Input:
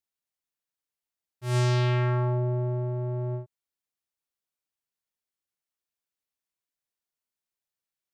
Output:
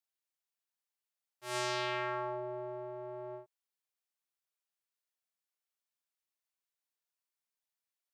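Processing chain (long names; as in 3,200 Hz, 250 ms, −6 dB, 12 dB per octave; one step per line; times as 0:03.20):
high-pass filter 530 Hz 12 dB per octave
level −2.5 dB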